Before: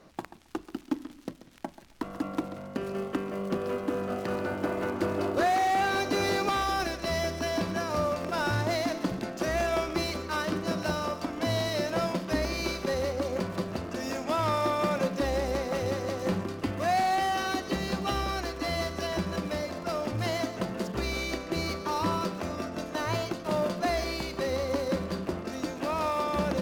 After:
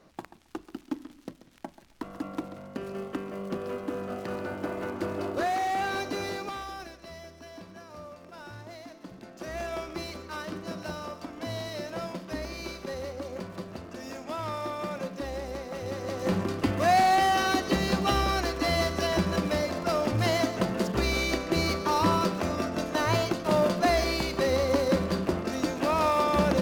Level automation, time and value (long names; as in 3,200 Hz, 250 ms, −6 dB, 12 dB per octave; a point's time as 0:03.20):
0:05.97 −3 dB
0:07.22 −16 dB
0:08.98 −16 dB
0:09.62 −6.5 dB
0:15.76 −6.5 dB
0:16.49 +4.5 dB